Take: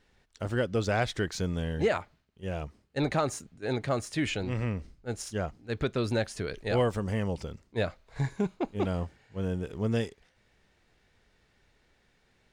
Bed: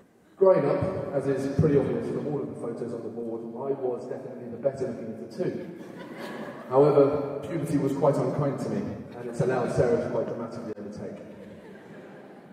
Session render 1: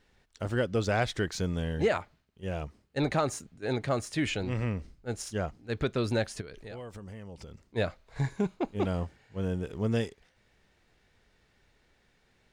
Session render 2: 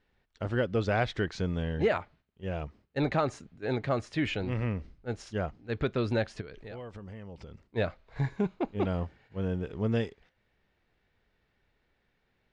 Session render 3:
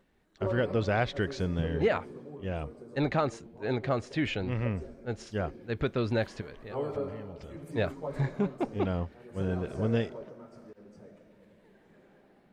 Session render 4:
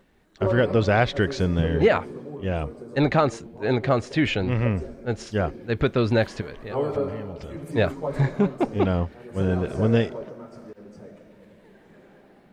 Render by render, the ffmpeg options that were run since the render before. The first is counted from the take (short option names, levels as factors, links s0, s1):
-filter_complex "[0:a]asplit=3[s0][s1][s2];[s0]afade=t=out:st=6.4:d=0.02[s3];[s1]acompressor=threshold=0.00794:ratio=4:attack=3.2:release=140:knee=1:detection=peak,afade=t=in:st=6.4:d=0.02,afade=t=out:st=7.65:d=0.02[s4];[s2]afade=t=in:st=7.65:d=0.02[s5];[s3][s4][s5]amix=inputs=3:normalize=0"
-af "agate=range=0.501:threshold=0.00126:ratio=16:detection=peak,lowpass=3700"
-filter_complex "[1:a]volume=0.178[s0];[0:a][s0]amix=inputs=2:normalize=0"
-af "volume=2.51"